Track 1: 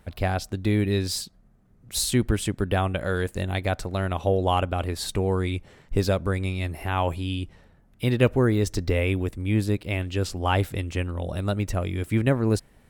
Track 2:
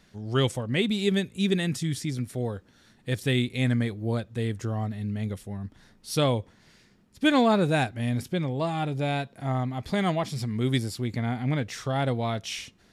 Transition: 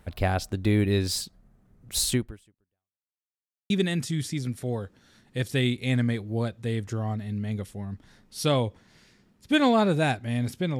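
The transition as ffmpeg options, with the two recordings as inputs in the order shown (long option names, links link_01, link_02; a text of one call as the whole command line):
ffmpeg -i cue0.wav -i cue1.wav -filter_complex "[0:a]apad=whole_dur=10.79,atrim=end=10.79,asplit=2[link_01][link_02];[link_01]atrim=end=3.13,asetpts=PTS-STARTPTS,afade=type=out:start_time=2.13:duration=1:curve=exp[link_03];[link_02]atrim=start=3.13:end=3.7,asetpts=PTS-STARTPTS,volume=0[link_04];[1:a]atrim=start=1.42:end=8.51,asetpts=PTS-STARTPTS,afade=type=in:duration=0.004:curve=hsin[link_05];[link_03][link_04][link_05]concat=n=3:v=0:a=1" out.wav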